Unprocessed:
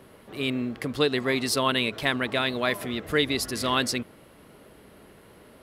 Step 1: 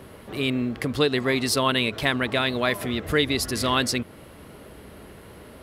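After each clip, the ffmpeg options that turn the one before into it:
-filter_complex "[0:a]equalizer=f=70:t=o:w=1.3:g=7,asplit=2[a][b];[b]acompressor=threshold=-34dB:ratio=6,volume=0dB[c];[a][c]amix=inputs=2:normalize=0"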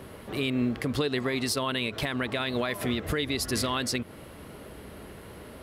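-af "alimiter=limit=-18dB:level=0:latency=1:release=138"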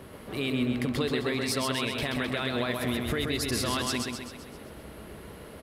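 -af "aecho=1:1:130|260|390|520|650|780|910:0.631|0.334|0.177|0.0939|0.0498|0.0264|0.014,volume=-2dB"

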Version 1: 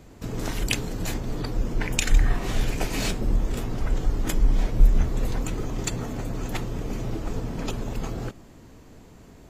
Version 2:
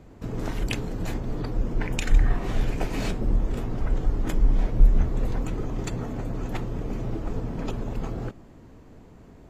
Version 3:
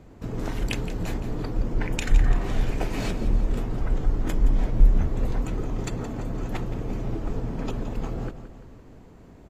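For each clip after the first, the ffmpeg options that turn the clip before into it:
-af "highshelf=f=2.8k:g=-11.5"
-af "aecho=1:1:170|340|510|680|850:0.237|0.126|0.0666|0.0353|0.0187"

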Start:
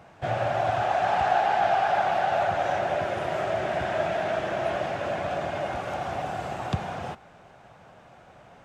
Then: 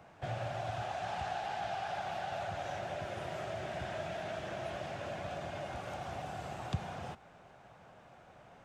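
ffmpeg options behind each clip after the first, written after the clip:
-filter_complex "[0:a]acrossover=split=180|3000[a][b][c];[b]acompressor=threshold=-38dB:ratio=2[d];[a][d][c]amix=inputs=3:normalize=0,volume=-6dB"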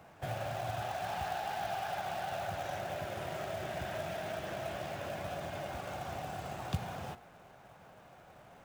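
-af "bandreject=f=118.4:t=h:w=4,bandreject=f=236.8:t=h:w=4,bandreject=f=355.2:t=h:w=4,bandreject=f=473.6:t=h:w=4,bandreject=f=592:t=h:w=4,bandreject=f=710.4:t=h:w=4,bandreject=f=828.8:t=h:w=4,bandreject=f=947.2:t=h:w=4,bandreject=f=1.0656k:t=h:w=4,bandreject=f=1.184k:t=h:w=4,bandreject=f=1.3024k:t=h:w=4,bandreject=f=1.4208k:t=h:w=4,bandreject=f=1.5392k:t=h:w=4,bandreject=f=1.6576k:t=h:w=4,bandreject=f=1.776k:t=h:w=4,bandreject=f=1.8944k:t=h:w=4,bandreject=f=2.0128k:t=h:w=4,bandreject=f=2.1312k:t=h:w=4,bandreject=f=2.2496k:t=h:w=4,bandreject=f=2.368k:t=h:w=4,bandreject=f=2.4864k:t=h:w=4,bandreject=f=2.6048k:t=h:w=4,bandreject=f=2.7232k:t=h:w=4,bandreject=f=2.8416k:t=h:w=4,bandreject=f=2.96k:t=h:w=4,bandreject=f=3.0784k:t=h:w=4,bandreject=f=3.1968k:t=h:w=4,bandreject=f=3.3152k:t=h:w=4,acrusher=bits=4:mode=log:mix=0:aa=0.000001,volume=1dB"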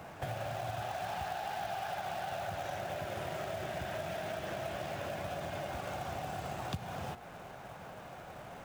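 -af "acompressor=threshold=-47dB:ratio=3,volume=8.5dB"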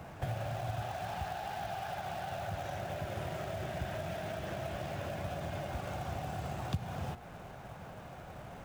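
-af "lowshelf=f=180:g=10,volume=-2dB"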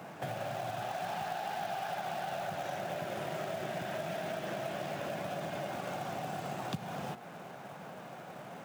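-af "highpass=f=160:w=0.5412,highpass=f=160:w=1.3066,volume=2.5dB"

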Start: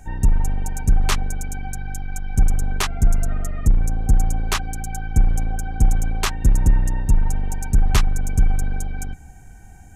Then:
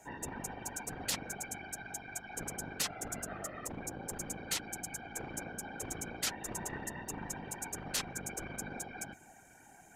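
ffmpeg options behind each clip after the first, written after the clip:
-af "highpass=300,afftfilt=real='re*lt(hypot(re,im),0.112)':imag='im*lt(hypot(re,im),0.112)':win_size=1024:overlap=0.75,afftfilt=real='hypot(re,im)*cos(2*PI*random(0))':imag='hypot(re,im)*sin(2*PI*random(1))':win_size=512:overlap=0.75,volume=1dB"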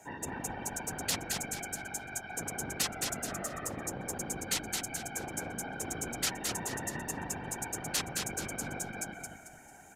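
-filter_complex "[0:a]highpass=60,asplit=2[a][b];[b]asplit=4[c][d][e][f];[c]adelay=222,afreqshift=-36,volume=-4dB[g];[d]adelay=444,afreqshift=-72,volume=-13.4dB[h];[e]adelay=666,afreqshift=-108,volume=-22.7dB[i];[f]adelay=888,afreqshift=-144,volume=-32.1dB[j];[g][h][i][j]amix=inputs=4:normalize=0[k];[a][k]amix=inputs=2:normalize=0,volume=2.5dB"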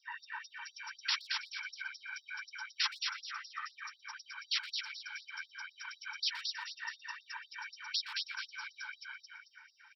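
-filter_complex "[0:a]afftfilt=real='re*between(b*sr/4096,430,5700)':imag='im*between(b*sr/4096,430,5700)':win_size=4096:overlap=0.75,asplit=2[a][b];[b]adelay=120,highpass=300,lowpass=3.4k,asoftclip=type=hard:threshold=-30.5dB,volume=-12dB[c];[a][c]amix=inputs=2:normalize=0,afftfilt=real='re*gte(b*sr/1024,820*pow(3700/820,0.5+0.5*sin(2*PI*4*pts/sr)))':imag='im*gte(b*sr/1024,820*pow(3700/820,0.5+0.5*sin(2*PI*4*pts/sr)))':win_size=1024:overlap=0.75,volume=3dB"

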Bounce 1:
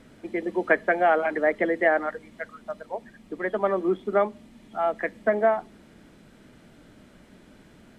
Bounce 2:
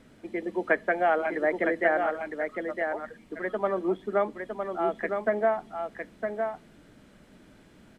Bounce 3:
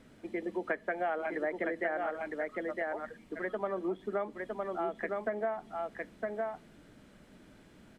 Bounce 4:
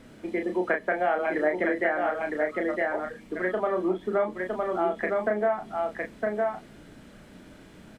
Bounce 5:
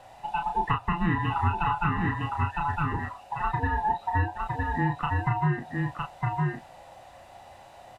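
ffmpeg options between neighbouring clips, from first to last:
-af "aecho=1:1:959:0.531,volume=-3.5dB"
-af "acompressor=threshold=-29dB:ratio=3,volume=-2.5dB"
-filter_complex "[0:a]asplit=2[a][b];[b]adelay=33,volume=-5dB[c];[a][c]amix=inputs=2:normalize=0,volume=7dB"
-af "afftfilt=real='real(if(lt(b,1008),b+24*(1-2*mod(floor(b/24),2)),b),0)':imag='imag(if(lt(b,1008),b+24*(1-2*mod(floor(b/24),2)),b),0)':win_size=2048:overlap=0.75"

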